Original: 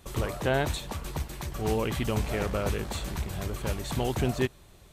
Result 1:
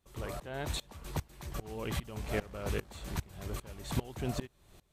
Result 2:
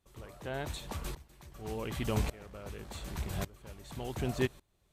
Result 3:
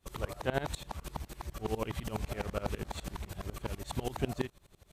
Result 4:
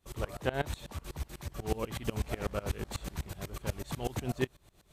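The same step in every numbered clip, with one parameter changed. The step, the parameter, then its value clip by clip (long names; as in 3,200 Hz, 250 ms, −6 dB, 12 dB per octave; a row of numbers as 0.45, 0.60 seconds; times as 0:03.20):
tremolo with a ramp in dB, speed: 2.5, 0.87, 12, 8.1 Hertz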